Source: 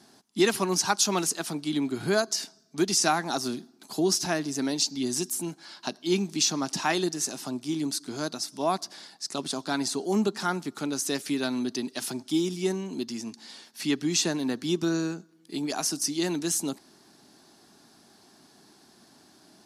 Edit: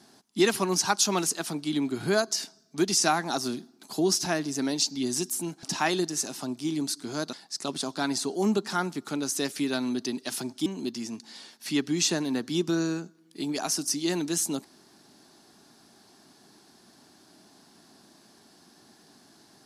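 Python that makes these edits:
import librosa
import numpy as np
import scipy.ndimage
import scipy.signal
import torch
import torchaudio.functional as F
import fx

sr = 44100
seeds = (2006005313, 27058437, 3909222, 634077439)

y = fx.edit(x, sr, fx.cut(start_s=5.63, length_s=1.04),
    fx.cut(start_s=8.37, length_s=0.66),
    fx.cut(start_s=12.36, length_s=0.44), tone=tone)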